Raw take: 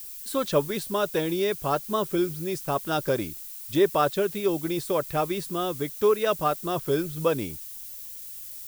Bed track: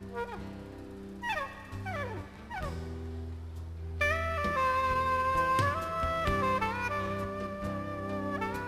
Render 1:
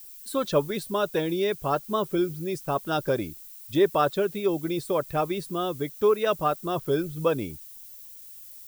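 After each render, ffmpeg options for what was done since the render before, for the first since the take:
-af "afftdn=nr=7:nf=-40"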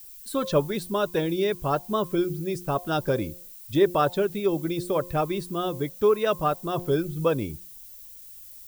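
-af "lowshelf=f=150:g=7,bandreject=f=176.9:t=h:w=4,bandreject=f=353.8:t=h:w=4,bandreject=f=530.7:t=h:w=4,bandreject=f=707.6:t=h:w=4,bandreject=f=884.5:t=h:w=4,bandreject=f=1.0614k:t=h:w=4"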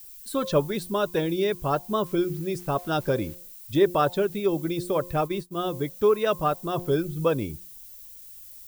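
-filter_complex "[0:a]asettb=1/sr,asplit=3[a][b][c];[a]atrim=end=2.064[d];[b]atrim=start=2.06:end=3.35,asetpts=PTS-STARTPTS,afade=t=in:d=0.004:c=qsin,afade=t=out:st=1.286:d=0.004:c=qsin,aeval=exprs='val(0)*gte(abs(val(0)),0.00562)':c=same[e];[c]atrim=start=3.346[f];[d][e]acrossfade=d=0.004:c1=hsin:c2=qsin[g];[g][f]acrossfade=d=0.004:c1=qsin:c2=hsin,asplit=3[h][i][j];[h]afade=t=out:st=5.24:d=0.02[k];[i]agate=range=-33dB:threshold=-28dB:ratio=3:release=100:detection=peak,afade=t=in:st=5.24:d=0.02,afade=t=out:st=5.68:d=0.02[l];[j]afade=t=in:st=5.68:d=0.02[m];[k][l][m]amix=inputs=3:normalize=0"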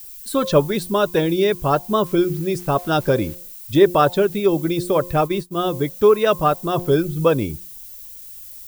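-af "volume=7dB"

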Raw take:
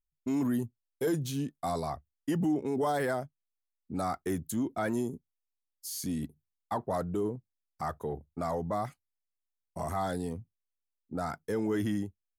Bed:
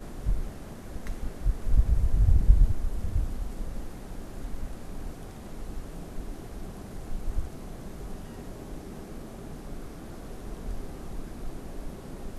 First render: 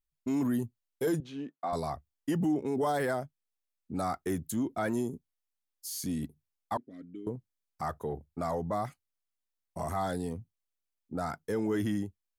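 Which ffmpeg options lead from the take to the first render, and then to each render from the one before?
-filter_complex "[0:a]asettb=1/sr,asplit=3[a][b][c];[a]atrim=end=1.204[d];[b]atrim=start=1.2:end=1.73,asetpts=PTS-STARTPTS,afade=t=in:d=0.004:c=qsin,afade=t=out:st=0.526:d=0.004:c=qsin,highpass=320,lowpass=2.3k[e];[c]atrim=start=1.726[f];[d][e]acrossfade=d=0.004:c1=hsin:c2=qsin[g];[g][f]acrossfade=d=0.004:c1=qsin:c2=hsin,asettb=1/sr,asplit=3[h][i][j];[h]atrim=end=6.774[k];[i]atrim=start=6.77:end=7.27,asetpts=PTS-STARTPTS,afade=t=in:d=0.004:c=qsin,afade=t=out:st=0.496:d=0.004:c=qsin,asplit=3[l][m][n];[l]bandpass=f=270:t=q:w=8,volume=0dB[o];[m]bandpass=f=2.29k:t=q:w=8,volume=-6dB[p];[n]bandpass=f=3.01k:t=q:w=8,volume=-9dB[q];[o][p][q]amix=inputs=3:normalize=0[r];[j]atrim=start=7.266[s];[k][r]acrossfade=d=0.004:c1=hsin:c2=qsin[t];[t][s]acrossfade=d=0.004:c1=qsin:c2=hsin"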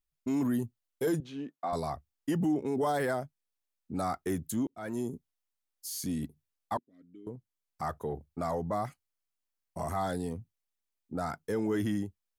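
-filter_complex "[0:a]asettb=1/sr,asplit=3[a][b][c];[a]atrim=end=8.534[d];[b]atrim=start=8.53:end=9.94,asetpts=PTS-STARTPTS,afade=t=in:d=0.004:c=qsin,afade=t=out:st=1.406:d=0.004:c=qsin,bandreject=f=3.6k:w=16[e];[c]atrim=start=9.936[f];[d][e]acrossfade=d=0.004:c1=hsin:c2=qsin[g];[g][f]acrossfade=d=0.004:c1=qsin:c2=hsin,asplit=3[h][i][j];[h]atrim=end=4.67,asetpts=PTS-STARTPTS,afade=t=out:st=4.666:d=0.004:c=hsin[k];[i]atrim=start=4.67:end=6.79,asetpts=PTS-STARTPTS,afade=t=in:d=0.44,afade=t=out:st=2.116:d=0.004:c=hsin:silence=0.0794328[l];[j]atrim=start=6.79,asetpts=PTS-STARTPTS,afade=t=in:d=1.06:silence=0.0794328[m];[k][l][m]concat=n=3:v=0:a=1"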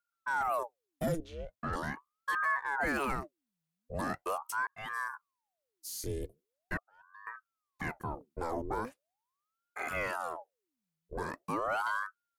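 -af "aeval=exprs='0.1*(cos(1*acos(clip(val(0)/0.1,-1,1)))-cos(1*PI/2))+0.002*(cos(4*acos(clip(val(0)/0.1,-1,1)))-cos(4*PI/2))':c=same,aeval=exprs='val(0)*sin(2*PI*790*n/s+790*0.8/0.41*sin(2*PI*0.41*n/s))':c=same"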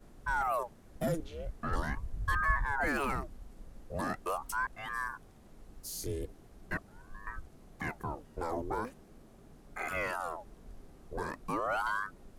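-filter_complex "[1:a]volume=-15.5dB[a];[0:a][a]amix=inputs=2:normalize=0"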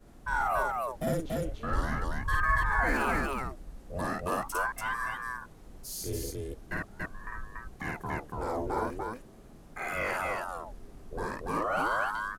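-af "aecho=1:1:52.48|285.7:0.891|0.891"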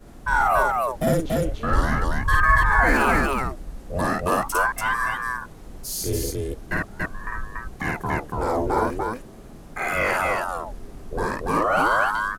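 -af "volume=9.5dB"

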